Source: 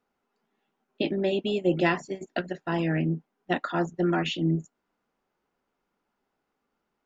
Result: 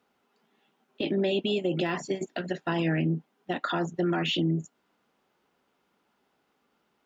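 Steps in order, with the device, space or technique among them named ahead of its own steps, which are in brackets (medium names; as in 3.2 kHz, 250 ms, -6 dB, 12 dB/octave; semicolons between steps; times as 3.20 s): broadcast voice chain (high-pass 75 Hz; de-esser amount 100%; compression 4:1, threshold -28 dBFS, peak gain reduction 8.5 dB; peaking EQ 3.3 kHz +5 dB 0.82 oct; peak limiter -25.5 dBFS, peak gain reduction 9 dB); trim +6.5 dB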